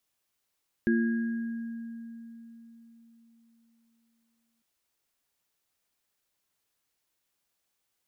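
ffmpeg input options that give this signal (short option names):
-f lavfi -i "aevalsrc='0.0794*pow(10,-3*t/4.09)*sin(2*PI*230*t)+0.0562*pow(10,-3*t/1.03)*sin(2*PI*345*t)+0.0266*pow(10,-3*t/2.18)*sin(2*PI*1640*t)':d=3.75:s=44100"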